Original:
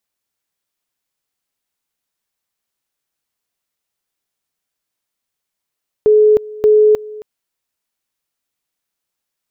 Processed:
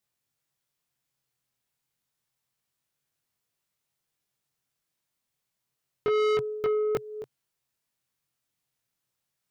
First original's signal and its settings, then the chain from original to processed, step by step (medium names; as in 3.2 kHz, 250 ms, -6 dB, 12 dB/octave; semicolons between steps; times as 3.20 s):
two-level tone 426 Hz -6 dBFS, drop 21 dB, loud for 0.31 s, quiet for 0.27 s, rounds 2
peaking EQ 130 Hz +12.5 dB 0.66 oct; chorus 0.29 Hz, delay 20 ms, depth 4.3 ms; saturation -23 dBFS